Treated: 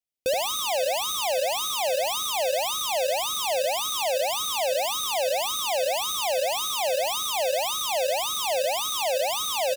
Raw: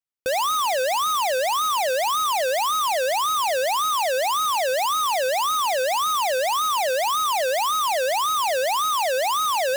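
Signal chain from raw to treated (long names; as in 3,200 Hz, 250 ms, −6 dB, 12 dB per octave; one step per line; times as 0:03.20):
flat-topped bell 1,300 Hz −12.5 dB 1.2 octaves
single-tap delay 76 ms −4.5 dB
brickwall limiter −19 dBFS, peak gain reduction 3 dB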